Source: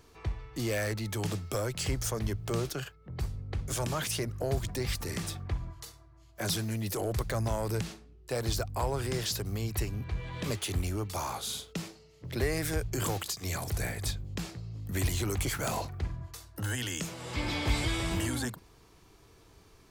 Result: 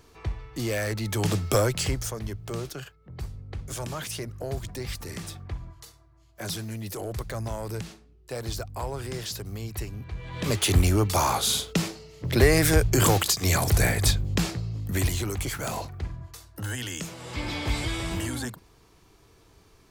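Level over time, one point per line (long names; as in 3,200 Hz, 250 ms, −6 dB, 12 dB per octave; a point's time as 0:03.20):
0:00.86 +3 dB
0:01.57 +11 dB
0:02.17 −1.5 dB
0:10.17 −1.5 dB
0:10.68 +11.5 dB
0:14.49 +11.5 dB
0:15.33 +1 dB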